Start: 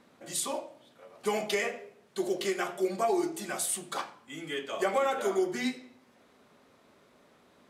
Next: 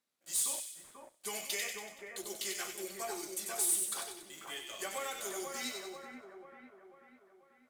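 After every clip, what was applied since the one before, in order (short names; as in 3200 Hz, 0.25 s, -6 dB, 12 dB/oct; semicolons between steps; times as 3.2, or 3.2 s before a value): pre-emphasis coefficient 0.9; sample leveller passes 3; split-band echo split 1900 Hz, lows 0.49 s, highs 94 ms, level -4.5 dB; gain -8 dB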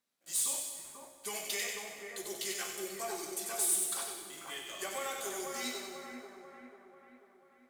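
plate-style reverb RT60 2.2 s, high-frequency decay 0.75×, DRR 5 dB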